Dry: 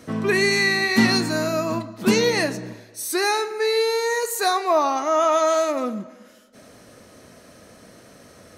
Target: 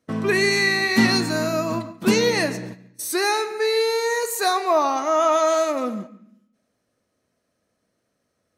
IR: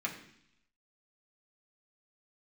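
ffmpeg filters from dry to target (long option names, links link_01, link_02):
-filter_complex "[0:a]agate=range=-26dB:threshold=-34dB:ratio=16:detection=peak,asplit=2[link_01][link_02];[1:a]atrim=start_sample=2205,adelay=138[link_03];[link_02][link_03]afir=irnorm=-1:irlink=0,volume=-21dB[link_04];[link_01][link_04]amix=inputs=2:normalize=0"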